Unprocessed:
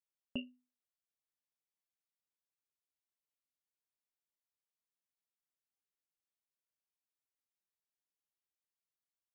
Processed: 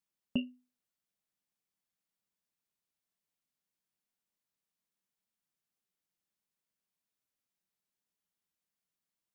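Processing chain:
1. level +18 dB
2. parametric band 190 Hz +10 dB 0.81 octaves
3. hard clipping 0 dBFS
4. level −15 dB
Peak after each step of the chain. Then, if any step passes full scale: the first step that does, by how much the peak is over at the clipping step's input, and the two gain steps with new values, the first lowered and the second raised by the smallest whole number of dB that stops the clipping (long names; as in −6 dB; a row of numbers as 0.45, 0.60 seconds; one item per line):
−9.0, −4.0, −4.0, −19.0 dBFS
no step passes full scale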